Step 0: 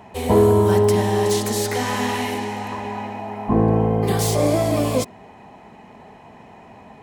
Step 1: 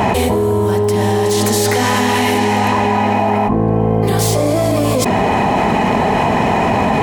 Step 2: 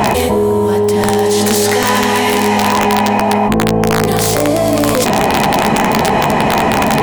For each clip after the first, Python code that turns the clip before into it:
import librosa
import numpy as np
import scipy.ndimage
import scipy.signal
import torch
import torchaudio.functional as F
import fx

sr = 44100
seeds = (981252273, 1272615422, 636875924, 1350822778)

y1 = fx.env_flatten(x, sr, amount_pct=100)
y1 = y1 * 10.0 ** (-2.5 / 20.0)
y2 = (np.mod(10.0 ** (5.0 / 20.0) * y1 + 1.0, 2.0) - 1.0) / 10.0 ** (5.0 / 20.0)
y2 = fx.peak_eq(y2, sr, hz=86.0, db=-6.0, octaves=0.47)
y2 = fx.doubler(y2, sr, ms=14.0, db=-9.0)
y2 = y2 * 10.0 ** (1.5 / 20.0)